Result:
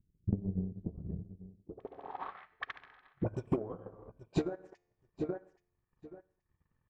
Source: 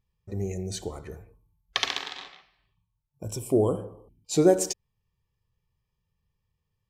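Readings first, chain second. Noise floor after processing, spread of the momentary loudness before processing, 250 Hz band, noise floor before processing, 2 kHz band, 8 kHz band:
-83 dBFS, 21 LU, -8.0 dB, -80 dBFS, -11.0 dB, under -30 dB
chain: high shelf 4200 Hz -5 dB; notches 50/100/150/200 Hz; on a send: feedback echo 0.827 s, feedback 15%, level -22.5 dB; on the sum: compressor 12:1, threshold -38 dBFS, peak gain reduction 24 dB; low-pass sweep 190 Hz -> 1600 Hz, 1.5–2.38; resonator 89 Hz, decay 0.91 s, harmonics all, mix 50%; AM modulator 220 Hz, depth 30%; dispersion highs, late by 46 ms, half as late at 640 Hz; transient shaper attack +11 dB, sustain -9 dB; gain +8 dB

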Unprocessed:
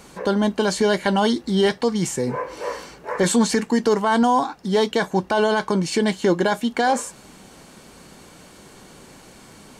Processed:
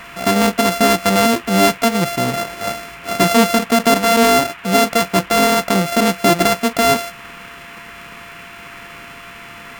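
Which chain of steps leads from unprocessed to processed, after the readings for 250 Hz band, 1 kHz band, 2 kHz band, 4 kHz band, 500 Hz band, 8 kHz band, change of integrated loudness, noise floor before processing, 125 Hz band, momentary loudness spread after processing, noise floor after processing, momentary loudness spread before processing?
+4.0 dB, +6.5 dB, +7.5 dB, +8.5 dB, +4.0 dB, +8.0 dB, +5.5 dB, -47 dBFS, +4.5 dB, 21 LU, -37 dBFS, 8 LU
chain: sample sorter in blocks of 64 samples; band noise 930–2800 Hz -43 dBFS; gain +5 dB

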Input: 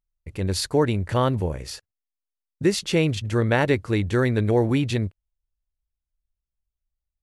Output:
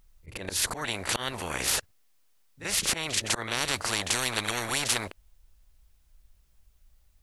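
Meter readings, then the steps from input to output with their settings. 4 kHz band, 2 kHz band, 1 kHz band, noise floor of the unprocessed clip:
+3.5 dB, -0.5 dB, -4.5 dB, under -85 dBFS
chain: auto swell 0.535 s; pre-echo 37 ms -14.5 dB; in parallel at -4 dB: soft clip -18 dBFS, distortion -13 dB; on the sum: spectral compressor 10:1; gain -3 dB

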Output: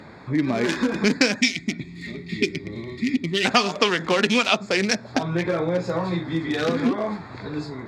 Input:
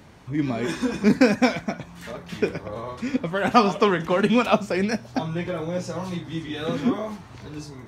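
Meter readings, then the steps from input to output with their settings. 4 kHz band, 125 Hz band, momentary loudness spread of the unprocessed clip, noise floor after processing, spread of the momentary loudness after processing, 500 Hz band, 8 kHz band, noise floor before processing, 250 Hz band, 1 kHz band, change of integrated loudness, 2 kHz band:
+8.5 dB, +0.5 dB, 16 LU, -42 dBFS, 13 LU, -0.5 dB, +8.0 dB, -44 dBFS, -0.5 dB, -2.0 dB, +1.0 dB, +5.0 dB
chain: Wiener smoothing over 15 samples; weighting filter D; spectral gain 1.41–3.45, 430–1800 Hz -22 dB; dynamic EQ 6600 Hz, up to +7 dB, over -40 dBFS, Q 0.99; compressor 3:1, threshold -28 dBFS, peak gain reduction 14.5 dB; gain +8.5 dB

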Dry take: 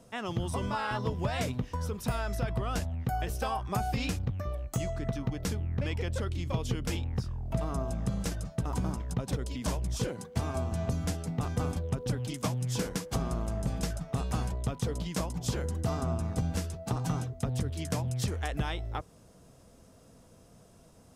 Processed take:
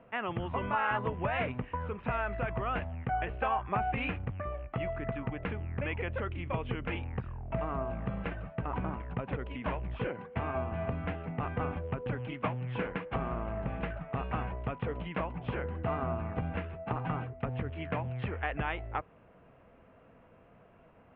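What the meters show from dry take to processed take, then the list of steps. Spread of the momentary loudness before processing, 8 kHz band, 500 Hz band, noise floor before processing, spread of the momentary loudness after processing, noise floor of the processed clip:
3 LU, under -40 dB, +0.5 dB, -57 dBFS, 5 LU, -59 dBFS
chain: steep low-pass 2700 Hz 48 dB/oct; low shelf 450 Hz -10.5 dB; gain +5 dB

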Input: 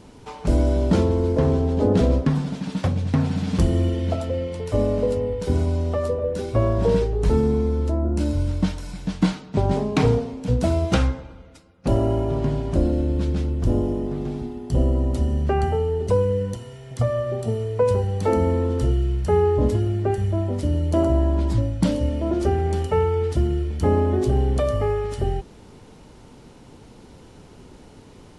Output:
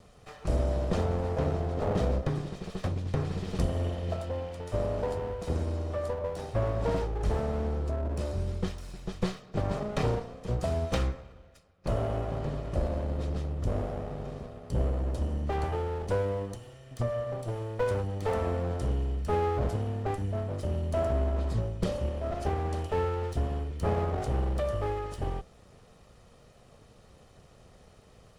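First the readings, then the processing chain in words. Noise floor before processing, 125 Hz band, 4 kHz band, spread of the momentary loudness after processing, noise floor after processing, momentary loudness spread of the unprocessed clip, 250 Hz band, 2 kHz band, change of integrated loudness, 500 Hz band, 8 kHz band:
-47 dBFS, -9.0 dB, -7.5 dB, 6 LU, -57 dBFS, 6 LU, -13.0 dB, -5.5 dB, -9.5 dB, -9.0 dB, -8.0 dB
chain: minimum comb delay 1.6 ms; gain -8 dB

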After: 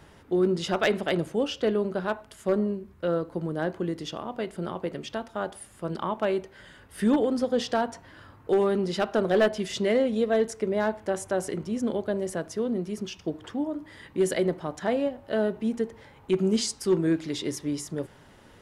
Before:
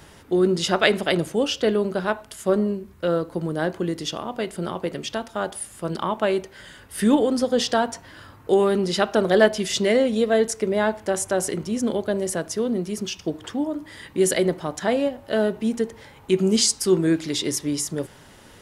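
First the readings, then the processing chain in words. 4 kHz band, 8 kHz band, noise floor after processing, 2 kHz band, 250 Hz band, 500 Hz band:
-8.5 dB, -11.5 dB, -53 dBFS, -6.5 dB, -4.0 dB, -4.5 dB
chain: high shelf 3600 Hz -9 dB; hard clip -11.5 dBFS, distortion -22 dB; gain -4 dB

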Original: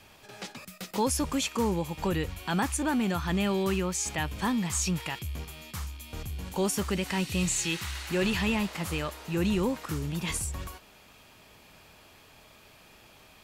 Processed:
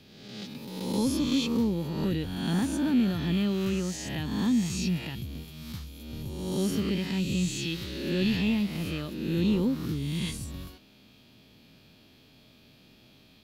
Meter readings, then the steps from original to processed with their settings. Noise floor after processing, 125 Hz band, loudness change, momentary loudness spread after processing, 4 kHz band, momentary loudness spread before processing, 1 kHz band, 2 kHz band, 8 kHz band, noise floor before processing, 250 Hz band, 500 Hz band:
-58 dBFS, +2.0 dB, +1.0 dB, 15 LU, 0.0 dB, 13 LU, -9.0 dB, -5.0 dB, -8.0 dB, -56 dBFS, +3.5 dB, -2.5 dB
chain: spectral swells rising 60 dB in 1.21 s; graphic EQ 125/250/1000/2000/4000/8000 Hz +7/+11/-7/-3/+9/-9 dB; gain -8 dB

